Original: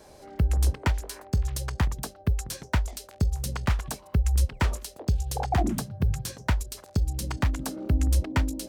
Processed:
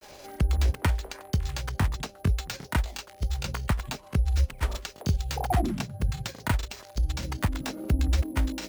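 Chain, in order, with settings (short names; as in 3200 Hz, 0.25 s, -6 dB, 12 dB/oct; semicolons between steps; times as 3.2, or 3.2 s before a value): careless resampling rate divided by 4×, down none, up hold; grains, spray 21 ms, pitch spread up and down by 0 st; mismatched tape noise reduction encoder only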